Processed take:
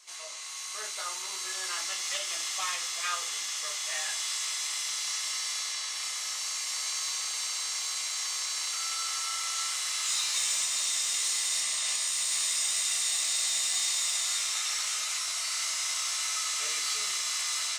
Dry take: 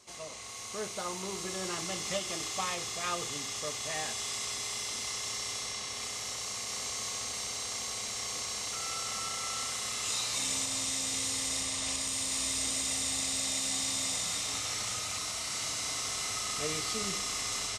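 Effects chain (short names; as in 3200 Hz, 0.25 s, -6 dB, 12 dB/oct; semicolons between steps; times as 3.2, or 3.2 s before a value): HPF 1300 Hz 12 dB/oct; in parallel at -6 dB: soft clip -31 dBFS, distortion -14 dB; on the sum: reverb RT60 0.20 s, pre-delay 7 ms, DRR 1.5 dB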